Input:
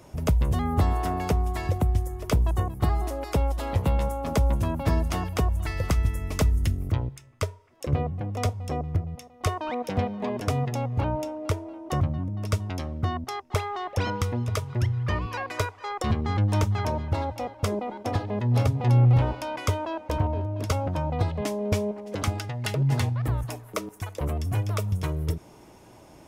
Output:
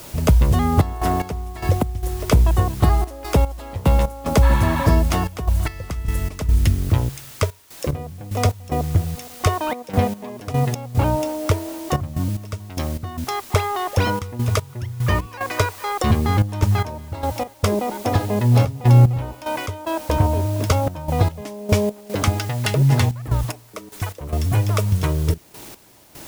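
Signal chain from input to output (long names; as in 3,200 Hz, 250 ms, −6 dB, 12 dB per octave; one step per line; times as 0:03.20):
healed spectral selection 0:04.45–0:04.86, 740–4,400 Hz after
in parallel at −10 dB: bit-depth reduction 6 bits, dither triangular
on the sum: gate pattern "xxxx.x..x.x" 74 BPM −12 dB
level +5.5 dB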